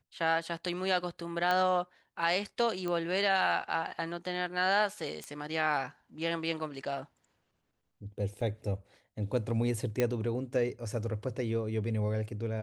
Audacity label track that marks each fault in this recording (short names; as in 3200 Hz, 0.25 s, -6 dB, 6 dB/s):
1.510000	1.510000	pop -17 dBFS
2.880000	2.880000	pop -22 dBFS
5.240000	5.240000	pop -25 dBFS
8.410000	8.410000	gap 2.7 ms
10.000000	10.000000	pop -14 dBFS